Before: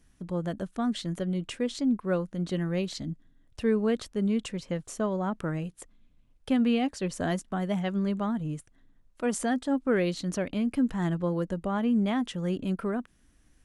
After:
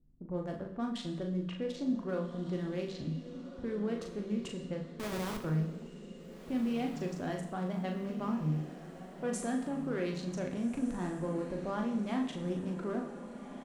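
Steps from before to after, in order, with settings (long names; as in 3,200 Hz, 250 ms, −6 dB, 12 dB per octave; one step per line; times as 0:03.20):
adaptive Wiener filter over 15 samples
low-pass that shuts in the quiet parts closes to 350 Hz, open at −25.5 dBFS
mains-hum notches 60/120/180 Hz
brickwall limiter −23.5 dBFS, peak gain reduction 8.5 dB
double-tracking delay 39 ms −5 dB
0:04.85–0:05.38: comparator with hysteresis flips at −35 dBFS
on a send: feedback delay with all-pass diffusion 1,585 ms, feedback 50%, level −11.5 dB
on the sum: coupled-rooms reverb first 0.87 s, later 2.4 s, DRR 5 dB
level −5.5 dB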